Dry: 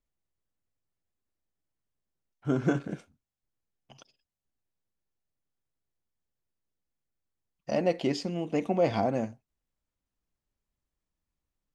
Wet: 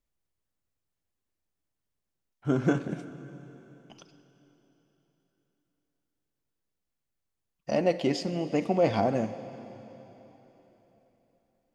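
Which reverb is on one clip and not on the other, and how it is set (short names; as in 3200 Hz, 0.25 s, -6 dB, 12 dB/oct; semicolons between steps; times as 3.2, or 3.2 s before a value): plate-style reverb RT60 3.8 s, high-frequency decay 1×, DRR 12 dB; gain +1.5 dB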